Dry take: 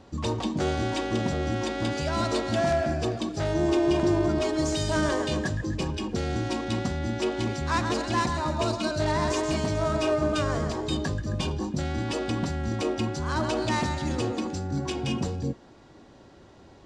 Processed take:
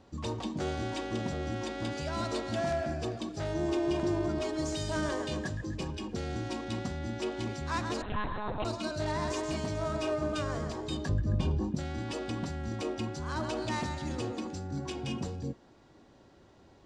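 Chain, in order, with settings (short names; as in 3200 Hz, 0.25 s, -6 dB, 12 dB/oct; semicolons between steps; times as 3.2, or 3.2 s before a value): 8.02–8.65 monotone LPC vocoder at 8 kHz 210 Hz; 11.09–11.75 tilt -2.5 dB/oct; gain -7 dB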